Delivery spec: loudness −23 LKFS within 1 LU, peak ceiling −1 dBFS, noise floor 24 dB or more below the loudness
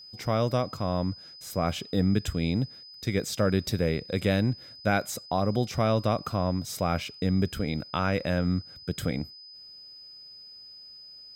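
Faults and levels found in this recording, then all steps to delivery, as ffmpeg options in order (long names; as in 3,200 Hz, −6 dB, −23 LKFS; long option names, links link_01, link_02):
interfering tone 5,000 Hz; level of the tone −45 dBFS; integrated loudness −28.5 LKFS; sample peak −11.0 dBFS; target loudness −23.0 LKFS
→ -af "bandreject=frequency=5000:width=30"
-af "volume=5.5dB"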